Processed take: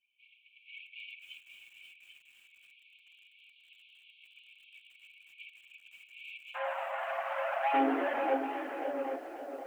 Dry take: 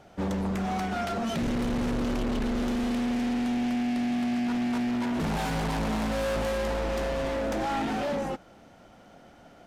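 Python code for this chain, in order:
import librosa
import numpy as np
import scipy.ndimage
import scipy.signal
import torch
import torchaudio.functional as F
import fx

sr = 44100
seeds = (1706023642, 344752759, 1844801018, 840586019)

y = fx.envelope_sharpen(x, sr, power=2.0)
y = np.clip(y, -10.0 ** (-33.5 / 20.0), 10.0 ** (-33.5 / 20.0))
y = scipy.signal.sosfilt(scipy.signal.butter(8, 3000.0, 'lowpass', fs=sr, output='sos'), y)
y = y + 10.0 ** (-10.0 / 20.0) * np.pad(y, (int(792 * sr / 1000.0), 0))[:len(y)]
y = fx.chorus_voices(y, sr, voices=4, hz=0.4, base_ms=11, depth_ms=3.8, mix_pct=70)
y = fx.brickwall_highpass(y, sr, low_hz=fx.steps((0.0, 2200.0), (6.54, 550.0), (7.73, 260.0)))
y = fx.echo_crushed(y, sr, ms=537, feedback_pct=35, bits=11, wet_db=-8)
y = F.gain(torch.from_numpy(y), 8.0).numpy()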